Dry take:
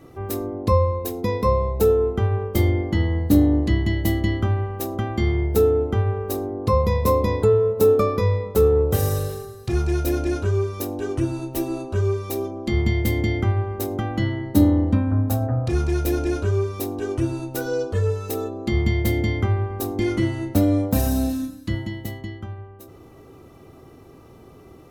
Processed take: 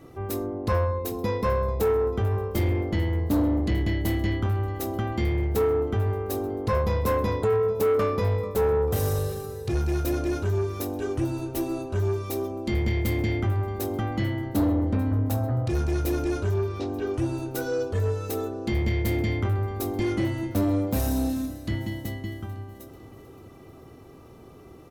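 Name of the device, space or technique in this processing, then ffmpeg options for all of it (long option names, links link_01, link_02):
saturation between pre-emphasis and de-emphasis: -filter_complex "[0:a]asettb=1/sr,asplit=3[link_01][link_02][link_03];[link_01]atrim=end=16.544[link_04];[link_02]atrim=start=16.54:end=17.14,asetpts=PTS-STARTPTS,afade=type=in:duration=0.004:curve=qsin,afade=type=out:start_time=0.596:duration=0.004:curve=qsin,lowpass=frequency=5000:width=0.5412,lowpass=frequency=5000:width=1.3066[link_05];[link_03]atrim=start=17.136[link_06];[link_04][link_05]acrossfade=duration=0.004:curve1=hsin:curve2=qsin[link_07];[link_07][link_06]acrossfade=duration=0.004:curve1=qsin:curve2=hsin,highshelf=frequency=6100:gain=7.5,aecho=1:1:441|882|1323|1764|2205:0.106|0.0625|0.0369|0.0218|0.0128,asoftclip=type=tanh:threshold=-17dB,highshelf=frequency=6100:gain=-7.5,volume=-1.5dB"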